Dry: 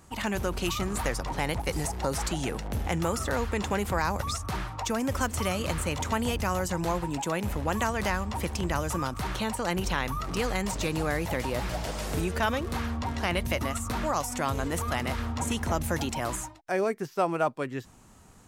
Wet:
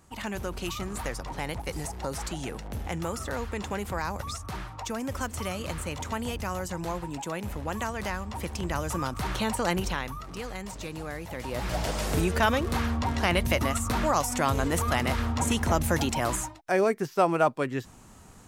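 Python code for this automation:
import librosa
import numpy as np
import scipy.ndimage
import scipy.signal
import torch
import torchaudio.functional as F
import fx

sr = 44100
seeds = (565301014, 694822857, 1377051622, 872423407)

y = fx.gain(x, sr, db=fx.line((8.23, -4.0), (9.66, 3.0), (10.27, -8.0), (11.31, -8.0), (11.79, 3.5)))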